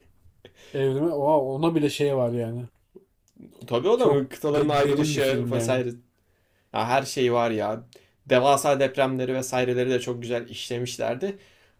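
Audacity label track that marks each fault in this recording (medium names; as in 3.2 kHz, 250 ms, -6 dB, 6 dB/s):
4.450000	5.590000	clipped -17 dBFS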